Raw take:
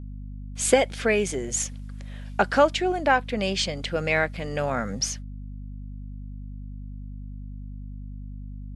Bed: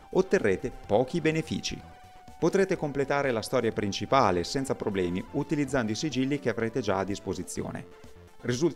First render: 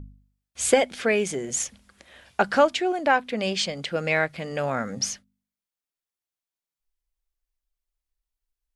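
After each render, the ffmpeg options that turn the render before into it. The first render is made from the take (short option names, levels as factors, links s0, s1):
-af "bandreject=f=50:t=h:w=4,bandreject=f=100:t=h:w=4,bandreject=f=150:t=h:w=4,bandreject=f=200:t=h:w=4,bandreject=f=250:t=h:w=4"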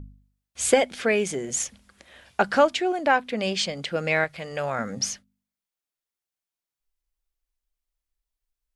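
-filter_complex "[0:a]asettb=1/sr,asplit=3[s0][s1][s2];[s0]atrim=end=4.244[s3];[s1]atrim=start=4.24:end=4.79,asetpts=PTS-STARTPTS,afade=t=in:d=0.004:c=qsin,afade=t=out:st=0.546:d=0.004:c=qsin,equalizer=f=240:w=1.4:g=-10[s4];[s2]atrim=start=4.786[s5];[s3][s4]acrossfade=d=0.004:c1=hsin:c2=qsin[s6];[s6][s5]acrossfade=d=0.004:c1=qsin:c2=hsin"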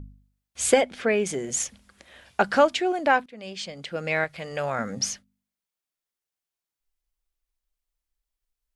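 -filter_complex "[0:a]asettb=1/sr,asplit=3[s0][s1][s2];[s0]atrim=end=0.814[s3];[s1]atrim=start=0.81:end=1.26,asetpts=PTS-STARTPTS,afade=t=in:d=0.004:c=qsin,afade=t=out:st=0.446:d=0.004:c=qsin,highshelf=f=3700:g=-10[s4];[s2]atrim=start=1.256[s5];[s3][s4]acrossfade=d=0.004:c1=hsin:c2=qsin[s6];[s6][s5]acrossfade=d=0.004:c1=qsin:c2=hsin,asplit=2[s7][s8];[s7]atrim=end=3.26,asetpts=PTS-STARTPTS,afade=t=out:st=3.256:d=0.004:c=hsin:silence=0.105925[s9];[s8]atrim=start=3.26,asetpts=PTS-STARTPTS,afade=t=in:d=1.22:silence=0.105925[s10];[s9][s10]concat=n=2:v=0:a=1"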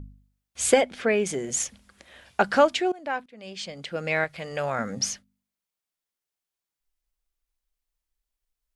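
-filter_complex "[0:a]asplit=2[s0][s1];[s0]atrim=end=2.92,asetpts=PTS-STARTPTS,afade=t=out:st=2.916:d=0.004:c=hsin:silence=0.11885[s2];[s1]atrim=start=2.92,asetpts=PTS-STARTPTS,afade=t=in:d=0.79:silence=0.11885[s3];[s2][s3]concat=n=2:v=0:a=1"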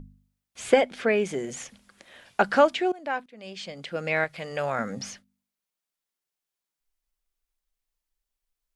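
-filter_complex "[0:a]acrossover=split=3400[s0][s1];[s1]acompressor=threshold=0.01:ratio=4:attack=1:release=60[s2];[s0][s2]amix=inputs=2:normalize=0,equalizer=f=66:t=o:w=0.71:g=-14.5"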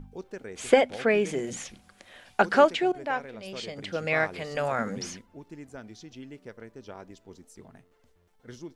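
-filter_complex "[1:a]volume=0.158[s0];[0:a][s0]amix=inputs=2:normalize=0"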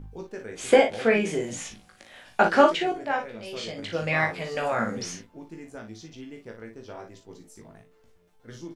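-filter_complex "[0:a]asplit=2[s0][s1];[s1]adelay=18,volume=0.631[s2];[s0][s2]amix=inputs=2:normalize=0,aecho=1:1:39|57:0.376|0.188"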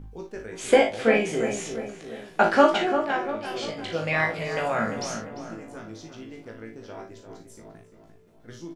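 -filter_complex "[0:a]asplit=2[s0][s1];[s1]adelay=36,volume=0.299[s2];[s0][s2]amix=inputs=2:normalize=0,asplit=2[s3][s4];[s4]adelay=347,lowpass=f=1900:p=1,volume=0.398,asplit=2[s5][s6];[s6]adelay=347,lowpass=f=1900:p=1,volume=0.52,asplit=2[s7][s8];[s8]adelay=347,lowpass=f=1900:p=1,volume=0.52,asplit=2[s9][s10];[s10]adelay=347,lowpass=f=1900:p=1,volume=0.52,asplit=2[s11][s12];[s12]adelay=347,lowpass=f=1900:p=1,volume=0.52,asplit=2[s13][s14];[s14]adelay=347,lowpass=f=1900:p=1,volume=0.52[s15];[s3][s5][s7][s9][s11][s13][s15]amix=inputs=7:normalize=0"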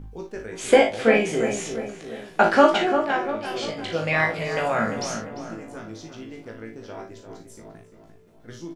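-af "volume=1.33,alimiter=limit=0.708:level=0:latency=1"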